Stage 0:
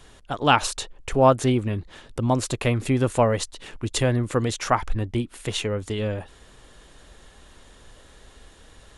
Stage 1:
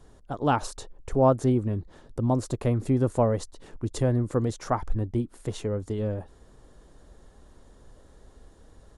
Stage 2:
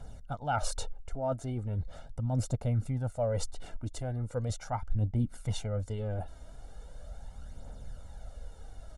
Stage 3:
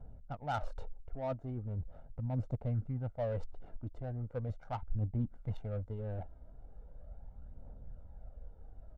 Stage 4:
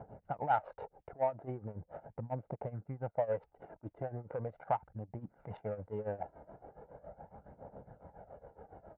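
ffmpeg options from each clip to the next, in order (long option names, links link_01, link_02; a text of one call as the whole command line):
ffmpeg -i in.wav -af "firequalizer=gain_entry='entry(310,0);entry(2600,-17);entry(4900,-9)':delay=0.05:min_phase=1,volume=-1.5dB" out.wav
ffmpeg -i in.wav -af "aecho=1:1:1.4:0.75,areverse,acompressor=threshold=-30dB:ratio=8,areverse,aphaser=in_gain=1:out_gain=1:delay=3.3:decay=0.44:speed=0.39:type=triangular" out.wav
ffmpeg -i in.wav -af "adynamicsmooth=sensitivity=4:basefreq=810,volume=-5dB" out.wav
ffmpeg -i in.wav -af "tremolo=f=7.2:d=0.87,acompressor=threshold=-45dB:ratio=12,highpass=230,equalizer=frequency=250:width_type=q:width=4:gain=-10,equalizer=frequency=850:width_type=q:width=4:gain=4,equalizer=frequency=1300:width_type=q:width=4:gain=-4,lowpass=frequency=2200:width=0.5412,lowpass=frequency=2200:width=1.3066,volume=17.5dB" out.wav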